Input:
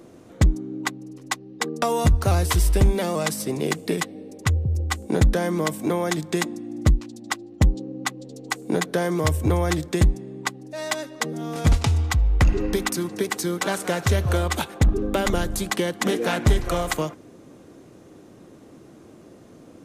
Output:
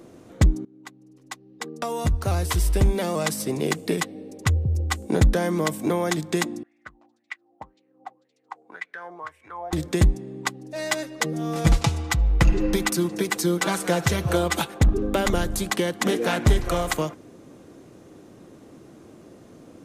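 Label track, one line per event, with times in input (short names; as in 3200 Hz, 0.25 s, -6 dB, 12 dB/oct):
0.650000	3.400000	fade in, from -21.5 dB
6.630000	9.730000	wah 1.9 Hz 720–2300 Hz, Q 6.3
10.750000	14.670000	comb 6 ms, depth 59%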